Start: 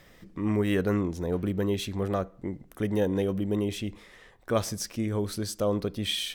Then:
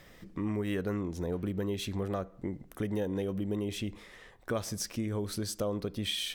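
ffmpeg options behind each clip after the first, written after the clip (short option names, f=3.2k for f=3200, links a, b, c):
-af "acompressor=threshold=-31dB:ratio=3"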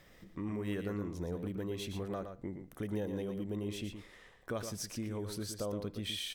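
-af "aecho=1:1:117:0.422,volume=-5.5dB"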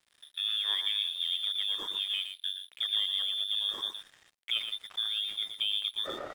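-af "lowpass=f=3.1k:t=q:w=0.5098,lowpass=f=3.1k:t=q:w=0.6013,lowpass=f=3.1k:t=q:w=0.9,lowpass=f=3.1k:t=q:w=2.563,afreqshift=-3700,aeval=exprs='sgn(val(0))*max(abs(val(0))-0.00158,0)':c=same,volume=6.5dB"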